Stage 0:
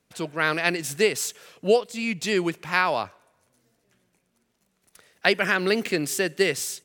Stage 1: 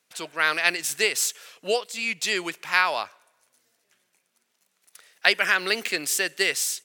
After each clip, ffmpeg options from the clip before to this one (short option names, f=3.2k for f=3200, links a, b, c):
-af "highpass=f=1.5k:p=1,volume=4.5dB"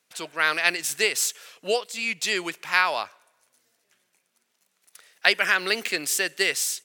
-af anull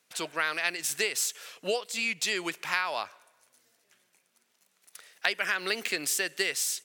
-af "acompressor=threshold=-28dB:ratio=3,volume=1dB"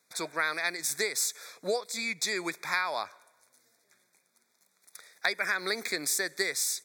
-af "asuperstop=centerf=2900:order=12:qfactor=3"